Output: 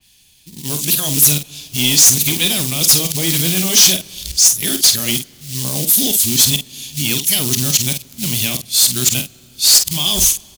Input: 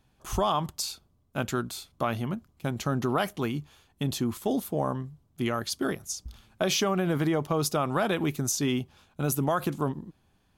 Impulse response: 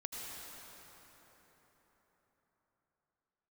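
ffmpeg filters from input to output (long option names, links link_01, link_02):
-filter_complex "[0:a]areverse,bass=frequency=250:gain=5,treble=frequency=4000:gain=3,acrossover=split=370|4900[link_01][link_02][link_03];[link_01]dynaudnorm=framelen=570:gausssize=3:maxgain=6dB[link_04];[link_02]alimiter=limit=-22dB:level=0:latency=1:release=215[link_05];[link_04][link_05][link_03]amix=inputs=3:normalize=0,acrusher=bits=7:mode=log:mix=0:aa=0.000001,aexciter=amount=10.4:drive=7.8:freq=2100,asoftclip=type=tanh:threshold=-9dB,asplit=2[link_06][link_07];[link_07]adelay=48,volume=-8dB[link_08];[link_06][link_08]amix=inputs=2:normalize=0,asplit=2[link_09][link_10];[1:a]atrim=start_sample=2205,highshelf=frequency=4400:gain=-11.5[link_11];[link_10][link_11]afir=irnorm=-1:irlink=0,volume=-19.5dB[link_12];[link_09][link_12]amix=inputs=2:normalize=0,adynamicequalizer=threshold=0.00794:dfrequency=2900:dqfactor=0.7:tfrequency=2900:tqfactor=0.7:attack=5:release=100:ratio=0.375:range=2.5:mode=boostabove:tftype=highshelf,volume=-2dB"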